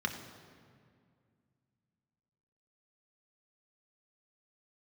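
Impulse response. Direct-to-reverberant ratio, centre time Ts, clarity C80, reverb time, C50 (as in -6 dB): 3.0 dB, 29 ms, 9.0 dB, 2.2 s, 8.0 dB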